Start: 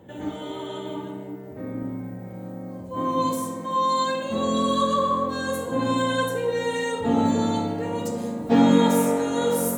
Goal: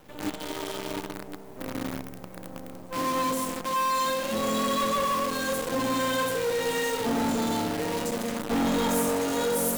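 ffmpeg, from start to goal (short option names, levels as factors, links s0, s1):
-filter_complex "[0:a]highpass=f=190:p=1,acrossover=split=5100[s0][s1];[s0]asoftclip=type=tanh:threshold=0.0841[s2];[s2][s1]amix=inputs=2:normalize=0,acrusher=bits=6:dc=4:mix=0:aa=0.000001"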